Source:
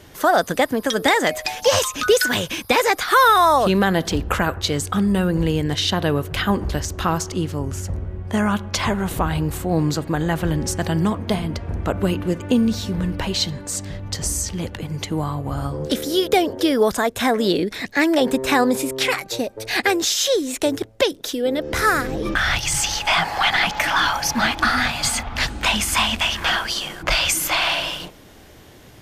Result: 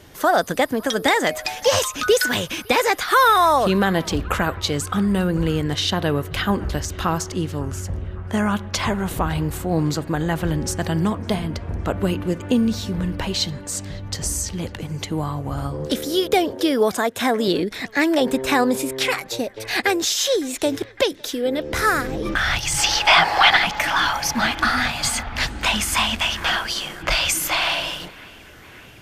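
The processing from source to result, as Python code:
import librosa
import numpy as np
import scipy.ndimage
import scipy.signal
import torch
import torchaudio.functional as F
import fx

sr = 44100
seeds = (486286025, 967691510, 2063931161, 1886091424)

p1 = fx.highpass(x, sr, hz=120.0, slope=12, at=(16.52, 17.48))
p2 = fx.spec_box(p1, sr, start_s=22.79, length_s=0.78, low_hz=290.0, high_hz=5900.0, gain_db=6)
p3 = p2 + fx.echo_banded(p2, sr, ms=558, feedback_pct=81, hz=1700.0, wet_db=-22.5, dry=0)
y = p3 * 10.0 ** (-1.0 / 20.0)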